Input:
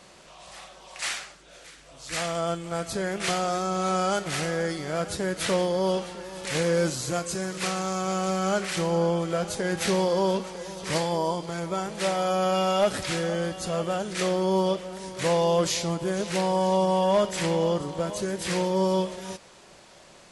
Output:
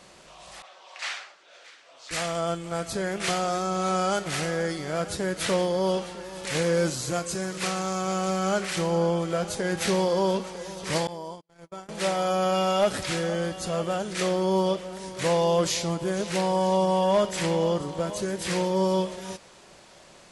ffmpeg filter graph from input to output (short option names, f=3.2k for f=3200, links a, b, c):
-filter_complex "[0:a]asettb=1/sr,asplit=3[a][b][c];[a]atrim=end=0.624[d];[b]atrim=start=0.62:end=2.11,asetpts=PTS-STARTPTS,afade=t=in:d=0.004:c=qsin,afade=t=out:st=1.486:d=0.004:c=qsin,highpass=580,lowpass=4.9k,adynamicequalizer=threshold=0.00501:dfrequency=1500:dqfactor=0.7:tfrequency=1500:tqfactor=0.7:attack=5:release=100:ratio=0.375:range=2.5:mode=cutabove:tftype=highshelf[e];[c]atrim=start=2.106[f];[d][e]acrossfade=d=0.004:c1=hsin:c2=qsin[g];[g][f]acrossfade=d=0.004:c1=qsin:c2=hsin,asettb=1/sr,asplit=3[h][i][j];[h]atrim=end=11.074[k];[i]atrim=start=11.07:end=11.89,asetpts=PTS-STARTPTS,afade=t=in:d=0.004:c=qsin,afade=t=out:st=0.816:d=0.004:c=qsin,agate=range=-50dB:threshold=-29dB:ratio=16:release=100:detection=peak,acompressor=threshold=-42dB:ratio=2:attack=3.2:release=140:knee=1:detection=peak[l];[j]atrim=start=11.886[m];[k][l]acrossfade=d=0.004:c1=hsin:c2=qsin[n];[n][m]acrossfade=d=0.004:c1=qsin:c2=hsin"